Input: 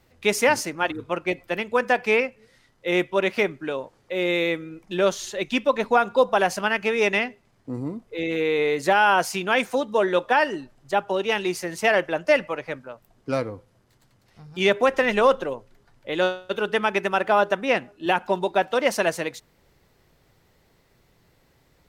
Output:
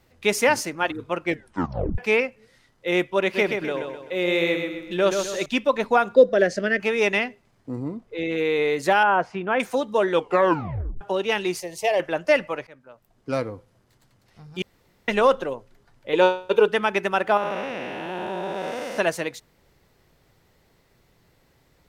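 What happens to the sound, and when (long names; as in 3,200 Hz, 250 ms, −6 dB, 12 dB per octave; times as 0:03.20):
0:01.25: tape stop 0.73 s
0:03.21–0:05.46: repeating echo 128 ms, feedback 42%, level −5.5 dB
0:06.15–0:06.80: drawn EQ curve 130 Hz 0 dB, 270 Hz +6 dB, 610 Hz +5 dB, 870 Hz −25 dB, 1,800 Hz +4 dB, 2,600 Hz −9 dB, 4,600 Hz −1 dB, 7,700 Hz −6 dB, 14,000 Hz −26 dB
0:07.75–0:08.38: high-shelf EQ 7,100 Hz −9 dB
0:09.03–0:09.60: low-pass filter 1,600 Hz
0:10.12: tape stop 0.89 s
0:11.60–0:12.00: phaser with its sweep stopped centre 590 Hz, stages 4
0:12.67–0:13.41: fade in, from −20.5 dB
0:14.62–0:15.08: fill with room tone
0:16.13–0:16.68: hollow resonant body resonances 460/930/2,400 Hz, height 15 dB
0:17.37–0:18.98: spectrum smeared in time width 435 ms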